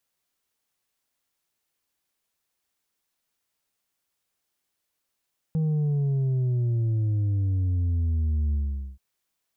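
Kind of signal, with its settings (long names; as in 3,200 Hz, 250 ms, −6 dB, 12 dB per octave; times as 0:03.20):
bass drop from 160 Hz, over 3.43 s, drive 4 dB, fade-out 0.45 s, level −22 dB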